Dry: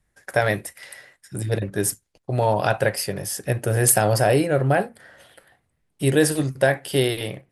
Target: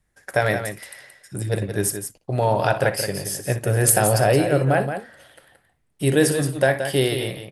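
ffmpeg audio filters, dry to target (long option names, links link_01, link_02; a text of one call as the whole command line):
ffmpeg -i in.wav -af "aecho=1:1:61|174:0.2|0.376" out.wav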